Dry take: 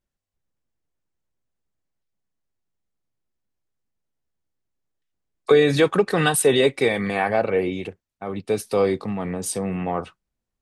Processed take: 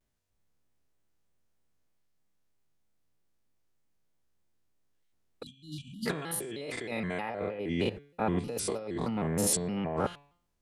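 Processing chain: spectrogram pixelated in time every 100 ms; compressor with a negative ratio -32 dBFS, ratio -1; de-hum 158.5 Hz, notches 31; spectral selection erased 5.43–6.07 s, 290–2600 Hz; vibrato with a chosen wave square 3.2 Hz, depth 160 cents; trim -2 dB

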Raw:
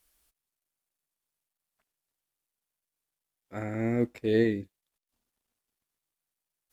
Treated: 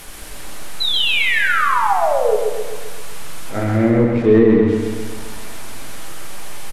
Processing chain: one-bit delta coder 64 kbps, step -40.5 dBFS; low-pass that closes with the level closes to 2.2 kHz, closed at -25 dBFS; peaking EQ 5.6 kHz -6.5 dB 2.1 oct; painted sound fall, 0.80–2.36 s, 410–4100 Hz -33 dBFS; in parallel at -5 dB: saturation -28 dBFS, distortion -8 dB; on the sum: flange 0.32 Hz, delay 4.9 ms, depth 9.7 ms, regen -72%; feedback delay 132 ms, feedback 55%, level -4 dB; on a send at -4 dB: reverberation RT60 0.50 s, pre-delay 5 ms; on the sum: loudness maximiser +16 dB; trim -2 dB

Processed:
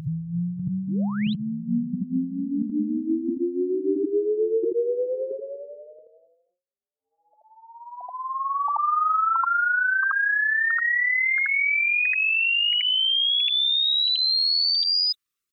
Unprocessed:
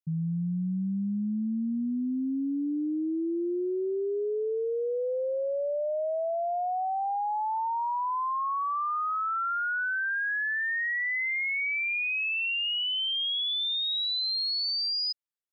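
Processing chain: resonances exaggerated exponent 2; elliptic band-stop 470–1200 Hz, stop band 80 dB; in parallel at -1 dB: peak limiter -35.5 dBFS, peak gain reduction 9 dB; on the sum: volume shaper 89 bpm, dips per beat 1, -10 dB, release 72 ms; on a send: reverse echo 80 ms -8 dB; on the sum: painted sound rise, 0.88–1.34 s, 260–4200 Hz -33 dBFS; formant shift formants -5 st; trim +5 dB

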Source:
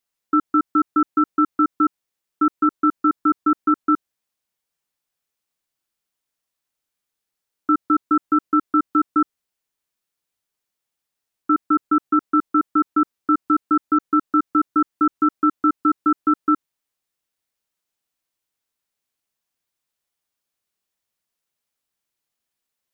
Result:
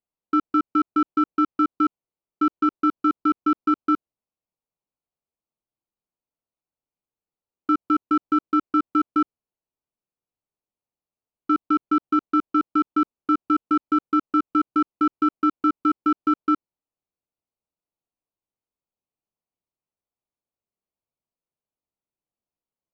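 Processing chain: local Wiener filter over 25 samples; trim -2 dB

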